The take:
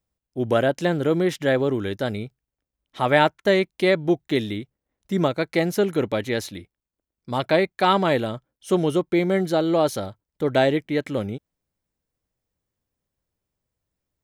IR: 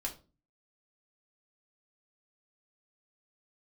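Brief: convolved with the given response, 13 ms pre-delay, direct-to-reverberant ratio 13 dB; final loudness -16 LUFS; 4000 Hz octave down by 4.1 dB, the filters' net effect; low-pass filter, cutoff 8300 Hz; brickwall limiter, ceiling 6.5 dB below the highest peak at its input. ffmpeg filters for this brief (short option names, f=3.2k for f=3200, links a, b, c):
-filter_complex "[0:a]lowpass=8.3k,equalizer=f=4k:t=o:g=-5,alimiter=limit=-11.5dB:level=0:latency=1,asplit=2[a][b];[1:a]atrim=start_sample=2205,adelay=13[c];[b][c]afir=irnorm=-1:irlink=0,volume=-13.5dB[d];[a][d]amix=inputs=2:normalize=0,volume=8dB"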